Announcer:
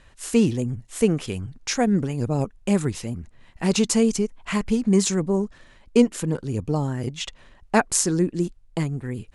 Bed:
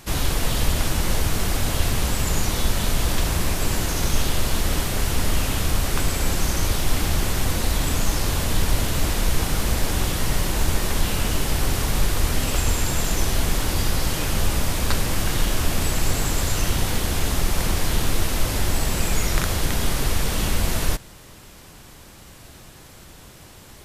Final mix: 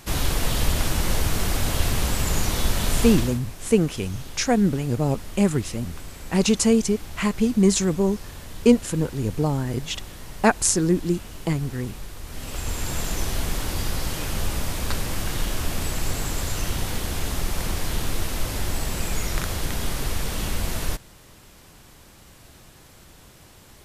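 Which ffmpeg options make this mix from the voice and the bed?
ffmpeg -i stem1.wav -i stem2.wav -filter_complex "[0:a]adelay=2700,volume=1dB[link_01];[1:a]volume=11dB,afade=type=out:start_time=3.07:duration=0.33:silence=0.16788,afade=type=in:start_time=12.25:duration=0.7:silence=0.251189[link_02];[link_01][link_02]amix=inputs=2:normalize=0" out.wav

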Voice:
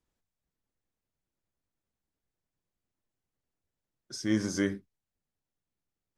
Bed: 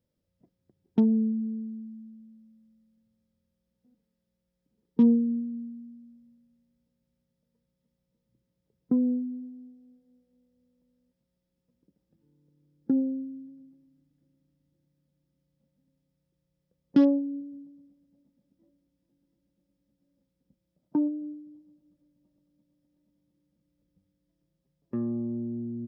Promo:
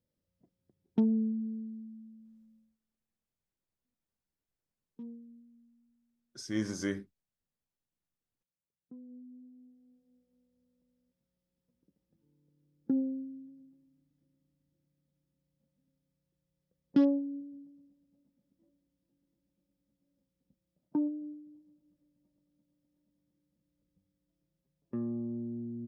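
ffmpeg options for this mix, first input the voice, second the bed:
ffmpeg -i stem1.wav -i stem2.wav -filter_complex "[0:a]adelay=2250,volume=-5dB[link_01];[1:a]volume=16dB,afade=type=out:start_time=2.56:duration=0.22:silence=0.0891251,afade=type=in:start_time=9.08:duration=1.09:silence=0.0891251[link_02];[link_01][link_02]amix=inputs=2:normalize=0" out.wav

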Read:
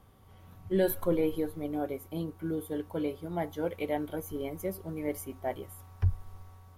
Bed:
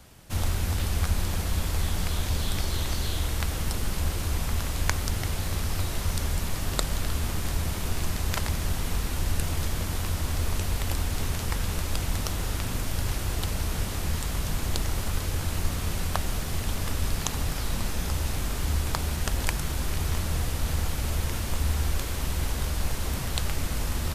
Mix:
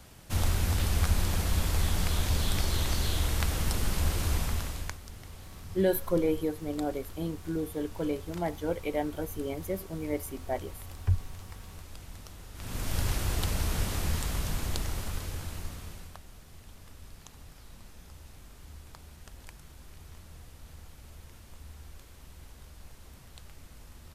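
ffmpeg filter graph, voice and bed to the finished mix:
ffmpeg -i stem1.wav -i stem2.wav -filter_complex "[0:a]adelay=5050,volume=1dB[link_01];[1:a]volume=16dB,afade=type=out:start_time=4.33:duration=0.65:silence=0.141254,afade=type=in:start_time=12.54:duration=0.43:silence=0.149624,afade=type=out:start_time=13.95:duration=2.25:silence=0.0944061[link_02];[link_01][link_02]amix=inputs=2:normalize=0" out.wav

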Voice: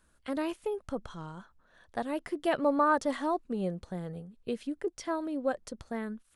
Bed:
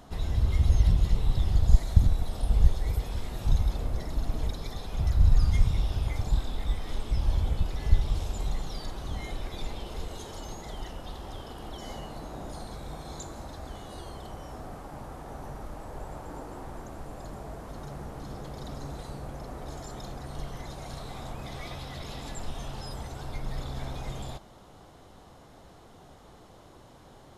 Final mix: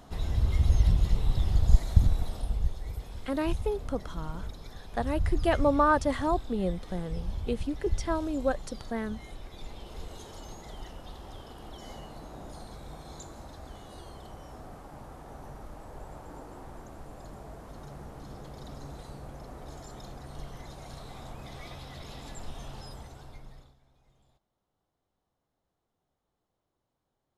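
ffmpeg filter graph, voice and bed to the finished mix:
ffmpeg -i stem1.wav -i stem2.wav -filter_complex "[0:a]adelay=3000,volume=2.5dB[link_01];[1:a]volume=3dB,afade=type=out:start_time=2.24:duration=0.36:silence=0.421697,afade=type=in:start_time=9.53:duration=0.57:silence=0.630957,afade=type=out:start_time=22.76:duration=1.01:silence=0.0501187[link_02];[link_01][link_02]amix=inputs=2:normalize=0" out.wav

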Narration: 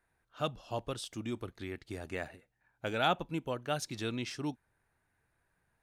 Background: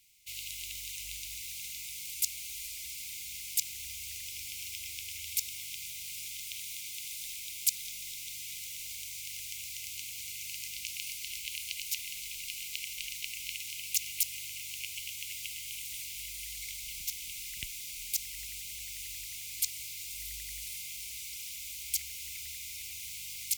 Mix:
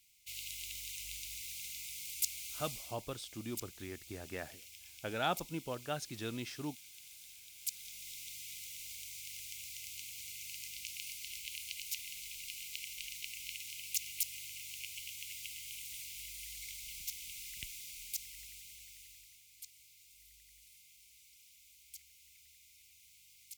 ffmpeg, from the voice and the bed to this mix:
ffmpeg -i stem1.wav -i stem2.wav -filter_complex "[0:a]adelay=2200,volume=-4.5dB[link_01];[1:a]volume=4.5dB,afade=type=out:start_time=2.74:duration=0.23:silence=0.316228,afade=type=in:start_time=7.52:duration=0.64:silence=0.398107,afade=type=out:start_time=17.69:duration=1.75:silence=0.188365[link_02];[link_01][link_02]amix=inputs=2:normalize=0" out.wav

